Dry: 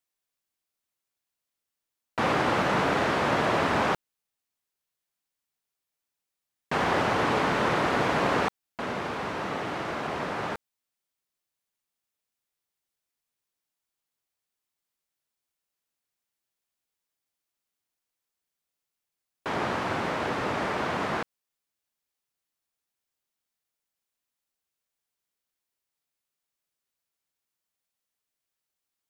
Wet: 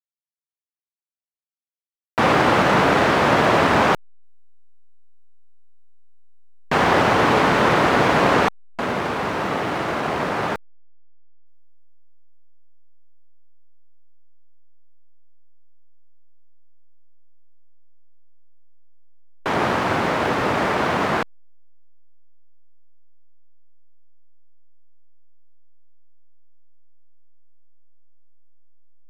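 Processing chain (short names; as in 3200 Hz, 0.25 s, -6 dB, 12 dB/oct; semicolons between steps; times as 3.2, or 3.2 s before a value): backlash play -43 dBFS; gain +8.5 dB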